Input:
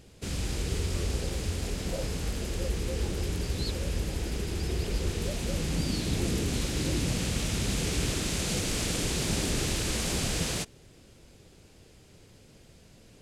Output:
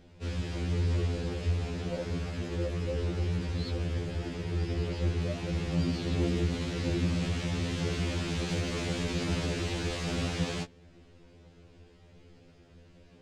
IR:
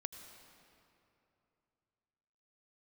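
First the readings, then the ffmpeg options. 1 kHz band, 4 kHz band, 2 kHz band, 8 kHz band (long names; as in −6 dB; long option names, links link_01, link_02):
−1.0 dB, −5.5 dB, −2.0 dB, −12.5 dB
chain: -af "adynamicsmooth=sensitivity=1:basefreq=3800,afftfilt=real='re*2*eq(mod(b,4),0)':imag='im*2*eq(mod(b,4),0)':win_size=2048:overlap=0.75,volume=2dB"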